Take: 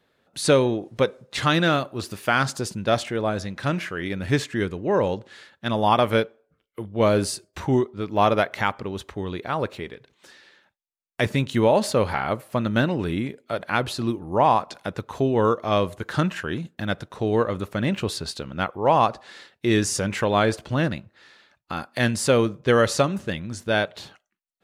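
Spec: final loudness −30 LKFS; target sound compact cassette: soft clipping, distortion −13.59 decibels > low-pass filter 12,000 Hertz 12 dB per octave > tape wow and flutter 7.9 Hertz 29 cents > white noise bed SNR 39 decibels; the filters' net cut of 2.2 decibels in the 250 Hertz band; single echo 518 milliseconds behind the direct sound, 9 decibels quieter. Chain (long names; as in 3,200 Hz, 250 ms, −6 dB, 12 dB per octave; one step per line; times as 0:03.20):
parametric band 250 Hz −3 dB
single-tap delay 518 ms −9 dB
soft clipping −15.5 dBFS
low-pass filter 12,000 Hz 12 dB per octave
tape wow and flutter 7.9 Hz 29 cents
white noise bed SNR 39 dB
level −3.5 dB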